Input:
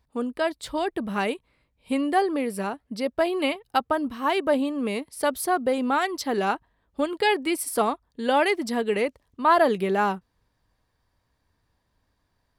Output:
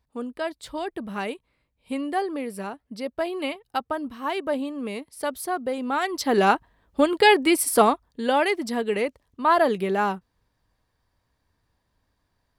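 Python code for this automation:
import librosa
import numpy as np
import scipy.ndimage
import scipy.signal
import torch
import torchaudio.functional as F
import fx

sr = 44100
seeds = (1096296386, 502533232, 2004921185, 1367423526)

y = fx.gain(x, sr, db=fx.line((5.84, -4.0), (6.4, 6.0), (7.84, 6.0), (8.38, -0.5)))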